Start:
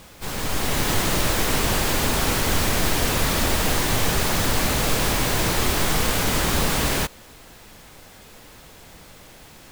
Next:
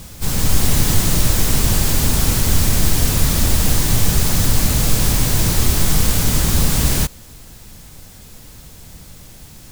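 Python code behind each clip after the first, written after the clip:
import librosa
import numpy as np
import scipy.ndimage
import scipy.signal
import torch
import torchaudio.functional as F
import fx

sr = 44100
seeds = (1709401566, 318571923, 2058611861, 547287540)

y = fx.bass_treble(x, sr, bass_db=13, treble_db=10)
y = fx.rider(y, sr, range_db=4, speed_s=0.5)
y = y * 10.0 ** (-3.0 / 20.0)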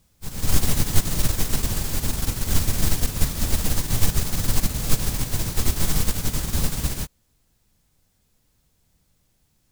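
y = fx.upward_expand(x, sr, threshold_db=-25.0, expansion=2.5)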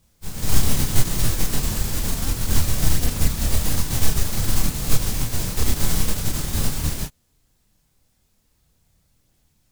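y = fx.chorus_voices(x, sr, voices=2, hz=0.8, base_ms=29, depth_ms=4.9, mix_pct=45)
y = y * 10.0 ** (4.0 / 20.0)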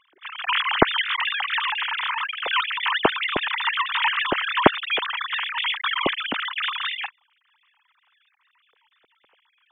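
y = fx.sine_speech(x, sr)
y = y * 10.0 ** (-8.0 / 20.0)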